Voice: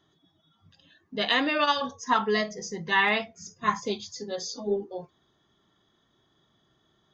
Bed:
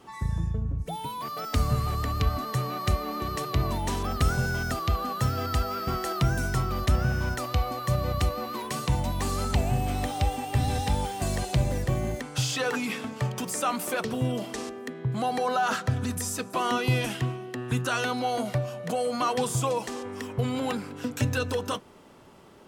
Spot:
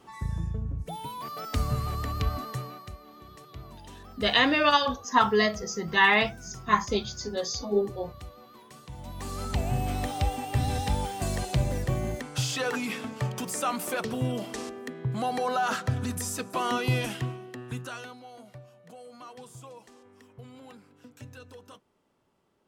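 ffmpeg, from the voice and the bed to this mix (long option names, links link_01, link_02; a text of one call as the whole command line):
ffmpeg -i stem1.wav -i stem2.wav -filter_complex "[0:a]adelay=3050,volume=2.5dB[link_01];[1:a]volume=13.5dB,afade=type=out:start_time=2.36:duration=0.54:silence=0.177828,afade=type=in:start_time=8.92:duration=0.89:silence=0.149624,afade=type=out:start_time=16.98:duration=1.22:silence=0.125893[link_02];[link_01][link_02]amix=inputs=2:normalize=0" out.wav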